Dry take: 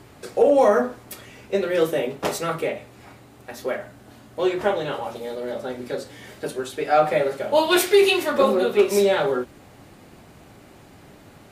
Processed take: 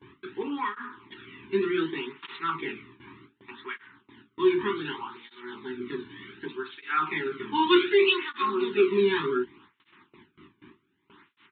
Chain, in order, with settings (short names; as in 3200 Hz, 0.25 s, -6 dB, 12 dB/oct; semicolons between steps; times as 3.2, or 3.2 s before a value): elliptic band-stop 380–950 Hz, stop band 40 dB; gate with hold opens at -38 dBFS; low shelf 100 Hz -5.5 dB; in parallel at -11 dB: soft clip -22 dBFS, distortion -10 dB; on the sum: downsampling 8000 Hz; tape flanging out of phase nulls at 0.66 Hz, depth 1.6 ms